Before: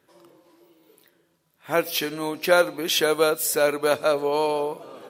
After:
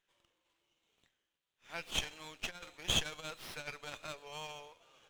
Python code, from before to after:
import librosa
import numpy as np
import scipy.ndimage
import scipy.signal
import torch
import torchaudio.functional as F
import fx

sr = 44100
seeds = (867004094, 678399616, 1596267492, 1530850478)

y = fx.over_compress(x, sr, threshold_db=-21.0, ratio=-0.5, at=(1.88, 4.08))
y = fx.bandpass_q(y, sr, hz=3100.0, q=2.5)
y = fx.running_max(y, sr, window=5)
y = y * librosa.db_to_amplitude(-5.5)